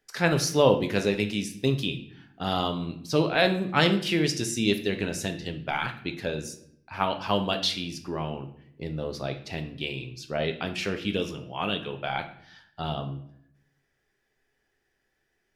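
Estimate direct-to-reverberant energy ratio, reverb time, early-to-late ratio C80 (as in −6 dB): 6.0 dB, 0.70 s, 15.0 dB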